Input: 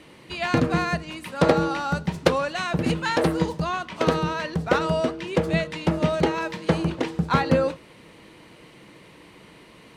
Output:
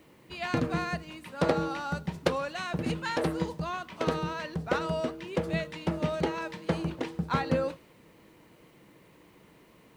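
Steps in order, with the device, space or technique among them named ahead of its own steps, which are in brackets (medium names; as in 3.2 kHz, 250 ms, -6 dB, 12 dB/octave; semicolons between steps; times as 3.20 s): plain cassette with noise reduction switched in (tape noise reduction on one side only decoder only; wow and flutter 19 cents; white noise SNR 39 dB); trim -7.5 dB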